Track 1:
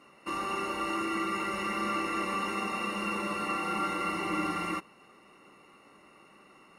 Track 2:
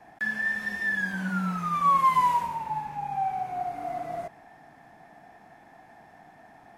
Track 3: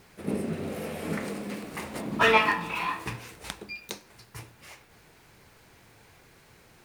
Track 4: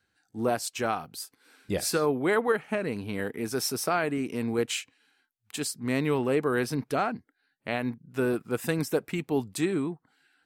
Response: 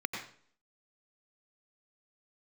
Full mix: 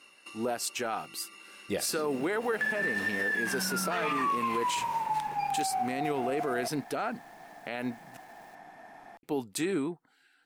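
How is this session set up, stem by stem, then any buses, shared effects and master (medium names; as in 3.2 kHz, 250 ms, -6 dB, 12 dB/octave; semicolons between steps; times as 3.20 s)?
-5.0 dB, 0.00 s, no send, high-order bell 5.6 kHz +14 dB 2.7 oct; compression 6:1, threshold -36 dBFS, peak gain reduction 14 dB; auto duck -8 dB, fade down 0.50 s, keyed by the fourth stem
+3.0 dB, 2.40 s, no send, compression, threshold -28 dBFS, peak gain reduction 10.5 dB
-7.0 dB, 1.70 s, no send, bit crusher 9-bit
+1.0 dB, 0.00 s, muted 8.17–9.23 s, no send, band-stop 1.1 kHz, Q 14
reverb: none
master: peaking EQ 81 Hz -12.5 dB 2.2 oct; peak limiter -21.5 dBFS, peak gain reduction 9 dB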